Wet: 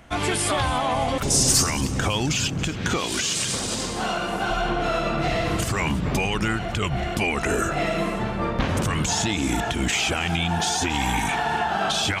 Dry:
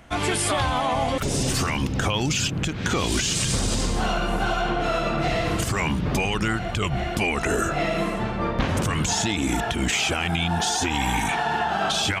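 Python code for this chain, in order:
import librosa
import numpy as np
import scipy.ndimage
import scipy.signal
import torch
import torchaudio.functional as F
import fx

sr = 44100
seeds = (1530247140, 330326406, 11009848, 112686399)

y = fx.high_shelf_res(x, sr, hz=4200.0, db=9.0, q=1.5, at=(1.3, 1.81))
y = fx.highpass(y, sr, hz=fx.line((2.96, 410.0), (4.49, 180.0)), slope=6, at=(2.96, 4.49), fade=0.02)
y = fx.echo_feedback(y, sr, ms=279, feedback_pct=44, wet_db=-17)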